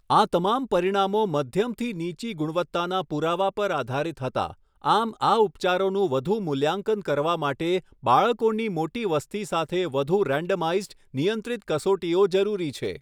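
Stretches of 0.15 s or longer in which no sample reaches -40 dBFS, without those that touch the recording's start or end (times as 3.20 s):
4.53–4.84 s
7.80–8.03 s
10.92–11.14 s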